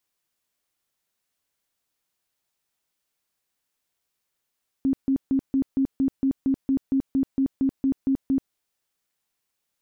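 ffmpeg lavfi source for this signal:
ffmpeg -f lavfi -i "aevalsrc='0.126*sin(2*PI*269*mod(t,0.23))*lt(mod(t,0.23),22/269)':duration=3.68:sample_rate=44100" out.wav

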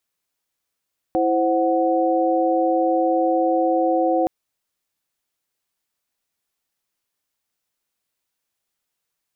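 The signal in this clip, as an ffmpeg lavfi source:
ffmpeg -f lavfi -i "aevalsrc='0.0944*(sin(2*PI*329.63*t)+sin(2*PI*523.25*t)+sin(2*PI*739.99*t))':duration=3.12:sample_rate=44100" out.wav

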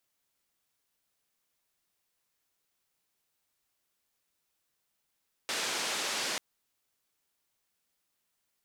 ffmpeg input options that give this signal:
ffmpeg -f lavfi -i "anoisesrc=color=white:duration=0.89:sample_rate=44100:seed=1,highpass=frequency=260,lowpass=frequency=6000,volume=-23.1dB" out.wav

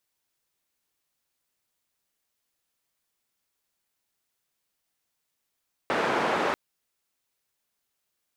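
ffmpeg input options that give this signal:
ffmpeg -f lavfi -i "anoisesrc=color=white:duration=0.64:sample_rate=44100:seed=1,highpass=frequency=240,lowpass=frequency=1200,volume=-8.1dB" out.wav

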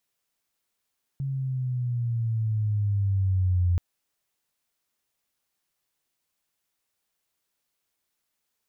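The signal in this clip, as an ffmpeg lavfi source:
ffmpeg -f lavfi -i "aevalsrc='pow(10,(-19+7.5*(t/2.58-1))/20)*sin(2*PI*138*2.58/(-8*log(2)/12)*(exp(-8*log(2)/12*t/2.58)-1))':duration=2.58:sample_rate=44100" out.wav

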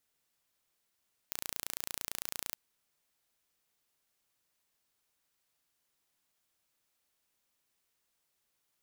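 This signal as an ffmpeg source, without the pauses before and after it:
ffmpeg -f lavfi -i "aevalsrc='0.335*eq(mod(n,1526),0)':duration=1.22:sample_rate=44100" out.wav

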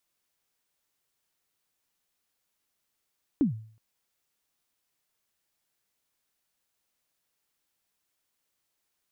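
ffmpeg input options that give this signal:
ffmpeg -f lavfi -i "aevalsrc='0.141*pow(10,-3*t/0.5)*sin(2*PI*(320*0.122/log(110/320)*(exp(log(110/320)*min(t,0.122)/0.122)-1)+110*max(t-0.122,0)))':duration=0.37:sample_rate=44100" out.wav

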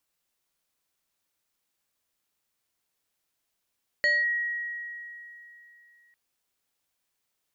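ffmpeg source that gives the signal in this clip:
ffmpeg -f lavfi -i "aevalsrc='0.112*pow(10,-3*t/3.07)*sin(2*PI*1900*t+0.55*clip(1-t/0.21,0,1)*sin(2*PI*1.31*1900*t))':duration=2.1:sample_rate=44100" out.wav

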